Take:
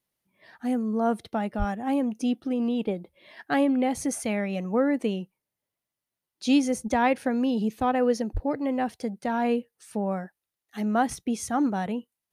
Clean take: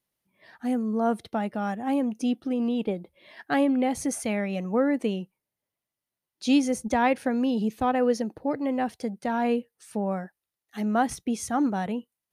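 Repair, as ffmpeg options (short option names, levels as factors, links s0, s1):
-filter_complex "[0:a]asplit=3[s0][s1][s2];[s0]afade=t=out:st=1.58:d=0.02[s3];[s1]highpass=f=140:w=0.5412,highpass=f=140:w=1.3066,afade=t=in:st=1.58:d=0.02,afade=t=out:st=1.7:d=0.02[s4];[s2]afade=t=in:st=1.7:d=0.02[s5];[s3][s4][s5]amix=inputs=3:normalize=0,asplit=3[s6][s7][s8];[s6]afade=t=out:st=8.33:d=0.02[s9];[s7]highpass=f=140:w=0.5412,highpass=f=140:w=1.3066,afade=t=in:st=8.33:d=0.02,afade=t=out:st=8.45:d=0.02[s10];[s8]afade=t=in:st=8.45:d=0.02[s11];[s9][s10][s11]amix=inputs=3:normalize=0"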